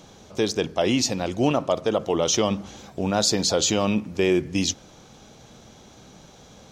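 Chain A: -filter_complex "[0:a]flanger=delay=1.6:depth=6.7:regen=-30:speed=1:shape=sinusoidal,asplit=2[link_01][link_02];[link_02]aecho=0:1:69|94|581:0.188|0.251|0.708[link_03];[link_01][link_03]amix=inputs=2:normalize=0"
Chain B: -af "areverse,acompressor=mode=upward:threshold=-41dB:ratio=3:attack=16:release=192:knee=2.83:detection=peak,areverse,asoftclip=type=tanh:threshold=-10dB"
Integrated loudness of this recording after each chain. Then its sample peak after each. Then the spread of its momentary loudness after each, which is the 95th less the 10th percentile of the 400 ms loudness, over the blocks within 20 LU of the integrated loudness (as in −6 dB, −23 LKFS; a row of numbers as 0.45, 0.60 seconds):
−26.0, −24.0 LKFS; −10.5, −11.5 dBFS; 7, 7 LU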